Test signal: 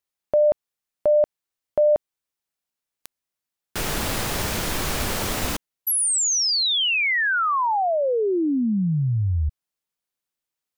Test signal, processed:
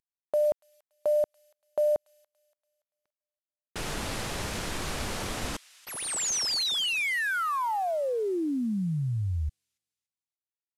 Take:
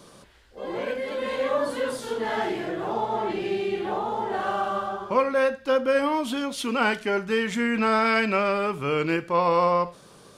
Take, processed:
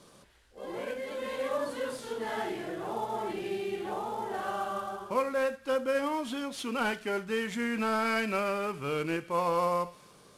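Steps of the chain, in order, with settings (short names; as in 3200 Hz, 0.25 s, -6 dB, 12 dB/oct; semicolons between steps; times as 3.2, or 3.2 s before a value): CVSD 64 kbps; thin delay 0.286 s, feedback 38%, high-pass 2300 Hz, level -17 dB; gain -7 dB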